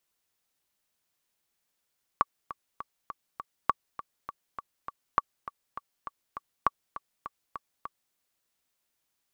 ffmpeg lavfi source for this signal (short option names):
-f lavfi -i "aevalsrc='pow(10,(-8.5-15*gte(mod(t,5*60/202),60/202))/20)*sin(2*PI*1140*mod(t,60/202))*exp(-6.91*mod(t,60/202)/0.03)':d=5.94:s=44100"